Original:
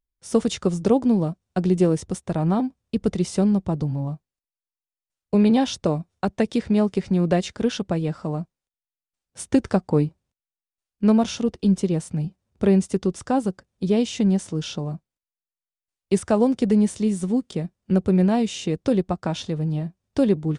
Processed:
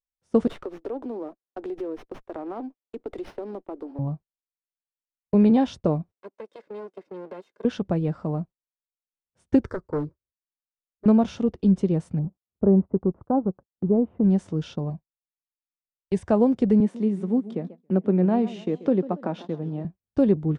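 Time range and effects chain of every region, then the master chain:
0.47–3.99 s: steep high-pass 280 Hz 48 dB/octave + compression 4:1, threshold -29 dBFS + sliding maximum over 5 samples
6.12–7.65 s: comb filter that takes the minimum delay 1.9 ms + high-pass 260 Hz 24 dB/octave + compression, threshold -34 dBFS
9.66–11.06 s: hard clipper -17.5 dBFS + static phaser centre 750 Hz, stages 6 + loudspeaker Doppler distortion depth 0.2 ms
12.19–14.24 s: companding laws mixed up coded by A + low-pass 1.1 kHz 24 dB/octave
14.90–16.27 s: Butterworth band-stop 1.3 kHz, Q 2.9 + peaking EQ 300 Hz -6 dB 1.5 oct
16.80–19.85 s: high-pass 190 Hz 24 dB/octave + peaking EQ 7.5 kHz -9 dB 1.8 oct + modulated delay 140 ms, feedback 42%, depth 202 cents, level -16 dB
whole clip: low-pass 1.1 kHz 6 dB/octave; gate -39 dBFS, range -17 dB

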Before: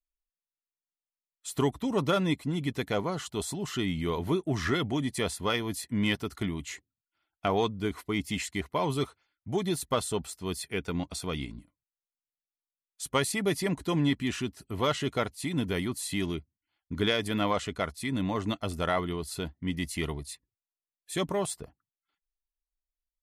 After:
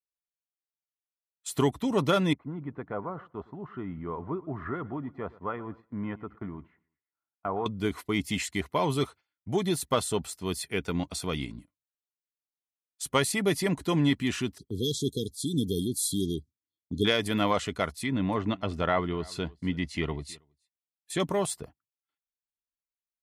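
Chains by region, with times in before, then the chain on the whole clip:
2.33–7.66 s: four-pole ladder low-pass 1.5 kHz, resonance 40% + feedback delay 115 ms, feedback 45%, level -20 dB
14.58–17.05 s: treble shelf 8.1 kHz +10 dB + level-controlled noise filter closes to 2.9 kHz, open at -27 dBFS + brick-wall FIR band-stop 490–3200 Hz
18.00–21.20 s: low-pass that closes with the level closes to 2.9 kHz, closed at -27.5 dBFS + delay 322 ms -23.5 dB
whole clip: gate -48 dBFS, range -11 dB; high-pass 66 Hz; trim +2 dB

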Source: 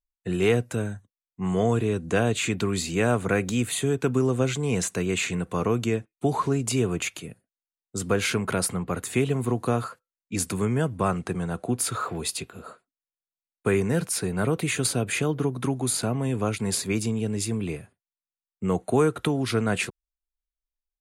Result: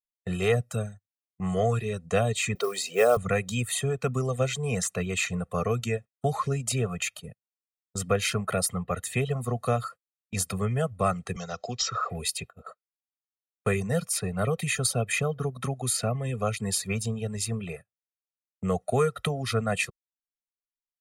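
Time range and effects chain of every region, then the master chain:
2.55–3.17 s: resonant high-pass 410 Hz, resonance Q 2.3 + modulation noise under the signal 22 dB
11.36–12.10 s: bass shelf 350 Hz -7.5 dB + careless resampling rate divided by 3×, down none, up filtered + three bands compressed up and down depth 40%
whole clip: comb 1.6 ms, depth 98%; reverb removal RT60 0.79 s; gate -38 dBFS, range -24 dB; trim -3.5 dB

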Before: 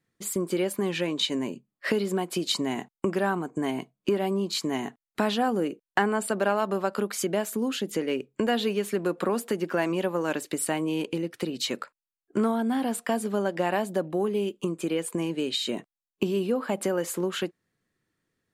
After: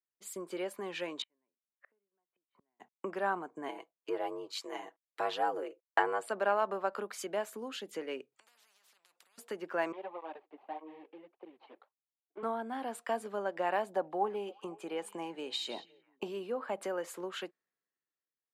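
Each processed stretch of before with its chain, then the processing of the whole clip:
1.22–2.80 s: low-pass 2.1 kHz 24 dB/octave + inverted gate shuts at -30 dBFS, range -37 dB
3.68–6.27 s: ring modulator 50 Hz + resonant low shelf 290 Hz -9.5 dB, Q 1.5 + comb 6.1 ms, depth 57%
8.32–9.38 s: compression, threshold -33 dBFS + spectrum-flattening compressor 10:1
9.92–12.43 s: median filter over 25 samples + cabinet simulation 330–3400 Hz, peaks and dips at 510 Hz -5 dB, 800 Hz +7 dB, 1.4 kHz -8 dB + cancelling through-zero flanger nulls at 1.7 Hz, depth 6 ms
13.93–16.28 s: peaking EQ 820 Hz +11.5 dB 0.33 oct + repeats whose band climbs or falls 173 ms, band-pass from 4 kHz, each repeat -1.4 oct, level -12 dB
whole clip: high-pass 750 Hz 12 dB/octave; tilt EQ -3.5 dB/octave; three bands expanded up and down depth 40%; trim -4 dB

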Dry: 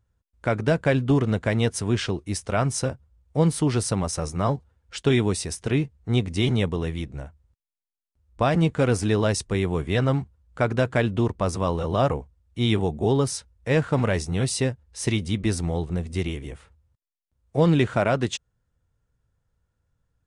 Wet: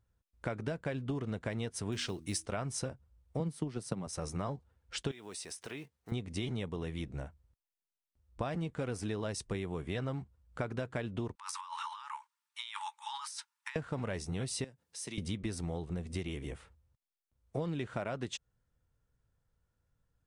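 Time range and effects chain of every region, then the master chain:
1.92–2.46 s: treble shelf 2.6 kHz +10 dB + de-hum 79.79 Hz, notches 4 + short-mantissa float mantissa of 4-bit
3.40–4.07 s: high-pass 140 Hz 24 dB/octave + bass shelf 200 Hz +11 dB + transient shaper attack +10 dB, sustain -2 dB
5.11–6.12 s: block-companded coder 7-bit + high-pass 700 Hz 6 dB/octave + compression 2.5:1, threshold -39 dBFS
11.35–13.76 s: brick-wall FIR high-pass 830 Hz + compressor with a negative ratio -39 dBFS
14.64–15.18 s: high-pass 140 Hz 24 dB/octave + treble shelf 4 kHz +9.5 dB + compression 2.5:1, threshold -42 dBFS
whole clip: peaking EQ 79 Hz -3 dB 1 oct; band-stop 6.8 kHz, Q 30; compression 10:1, threshold -29 dBFS; trim -4 dB

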